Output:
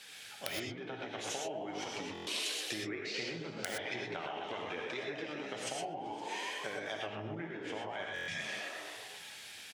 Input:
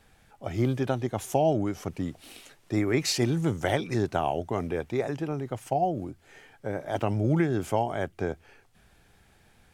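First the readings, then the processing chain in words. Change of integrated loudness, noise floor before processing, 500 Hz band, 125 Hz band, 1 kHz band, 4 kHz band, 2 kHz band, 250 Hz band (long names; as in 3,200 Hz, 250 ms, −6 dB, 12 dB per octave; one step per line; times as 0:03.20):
−11.0 dB, −61 dBFS, −12.5 dB, −21.5 dB, −10.5 dB, −0.5 dB, −1.0 dB, −15.5 dB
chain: echo with shifted repeats 128 ms, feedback 62%, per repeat +54 Hz, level −8.5 dB
flanger 1.2 Hz, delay 5.1 ms, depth 6.4 ms, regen +52%
healed spectral selection 0:08.08–0:08.76, 250–1,600 Hz after
treble cut that deepens with the level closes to 1,600 Hz, closed at −25.5 dBFS
meter weighting curve D
downward compressor 12 to 1, threshold −42 dBFS, peak gain reduction 19.5 dB
wrap-around overflow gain 29 dB
spectral tilt +2.5 dB per octave
reverb whose tail is shaped and stops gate 140 ms rising, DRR 1 dB
buffer that repeats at 0:02.13/0:08.14, samples 1,024, times 5
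level +4.5 dB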